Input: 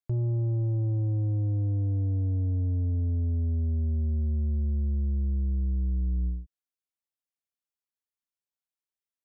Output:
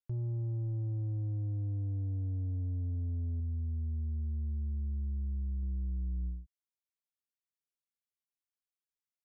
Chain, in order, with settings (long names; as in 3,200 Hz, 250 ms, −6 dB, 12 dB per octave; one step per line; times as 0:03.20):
parametric band 520 Hz −5.5 dB 1.3 octaves, from 0:03.40 −14.5 dB, from 0:05.63 −7.5 dB
level −7.5 dB